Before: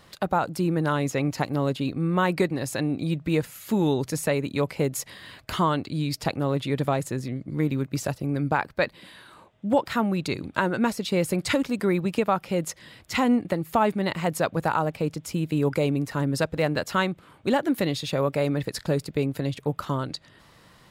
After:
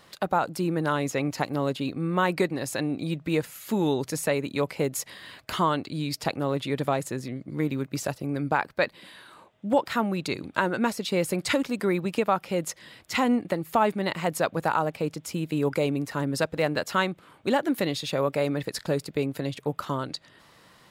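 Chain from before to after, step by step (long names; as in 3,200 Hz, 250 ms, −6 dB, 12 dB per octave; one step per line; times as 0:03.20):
low-shelf EQ 130 Hz −10.5 dB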